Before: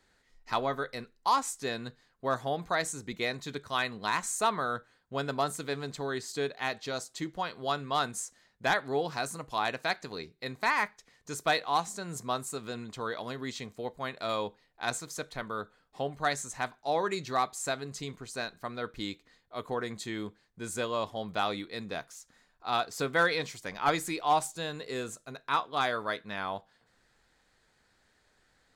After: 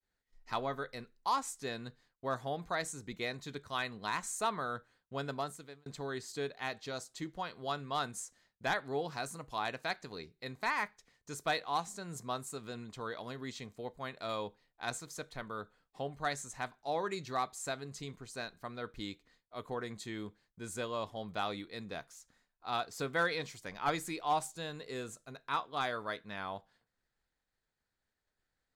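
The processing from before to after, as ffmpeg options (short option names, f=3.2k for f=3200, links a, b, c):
-filter_complex "[0:a]asplit=2[a][b];[a]atrim=end=5.86,asetpts=PTS-STARTPTS,afade=t=out:st=5.29:d=0.57[c];[b]atrim=start=5.86,asetpts=PTS-STARTPTS,afade=t=in:d=0.004:c=hsin[d];[c][d]concat=n=2:v=0:a=1,agate=range=-33dB:threshold=-59dB:ratio=3:detection=peak,lowshelf=f=110:g=5.5,volume=-6dB"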